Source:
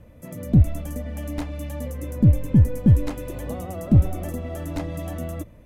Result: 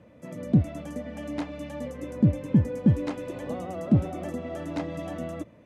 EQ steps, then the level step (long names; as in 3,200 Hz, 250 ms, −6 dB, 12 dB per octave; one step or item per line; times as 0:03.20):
high-pass filter 170 Hz 12 dB per octave
high-frequency loss of the air 78 metres
0.0 dB